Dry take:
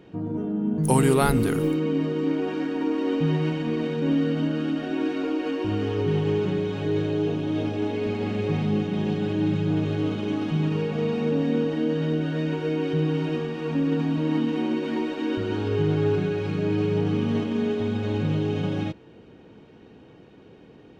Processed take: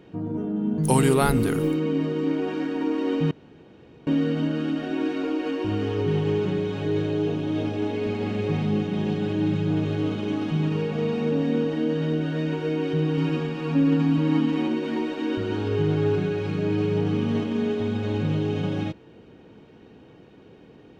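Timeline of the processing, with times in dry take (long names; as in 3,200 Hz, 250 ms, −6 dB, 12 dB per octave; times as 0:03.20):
0:00.56–0:01.09: parametric band 4,000 Hz +4.5 dB 1.3 octaves
0:03.31–0:04.07: fill with room tone
0:13.17–0:14.68: comb filter 7.2 ms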